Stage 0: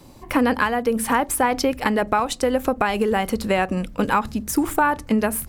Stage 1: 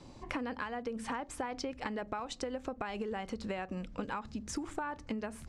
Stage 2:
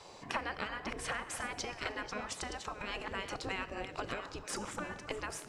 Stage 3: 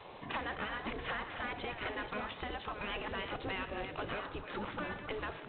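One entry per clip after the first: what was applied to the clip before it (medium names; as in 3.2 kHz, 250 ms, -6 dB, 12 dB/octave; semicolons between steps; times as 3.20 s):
low-pass 7.2 kHz 24 dB/octave; compression 5:1, threshold -30 dBFS, peak gain reduction 14.5 dB; trim -6 dB
chunks repeated in reverse 617 ms, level -10.5 dB; Schroeder reverb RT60 1.4 s, combs from 26 ms, DRR 16.5 dB; spectral gate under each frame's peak -10 dB weak; trim +6.5 dB
saturation -35.5 dBFS, distortion -11 dB; trim +3.5 dB; G.726 24 kbps 8 kHz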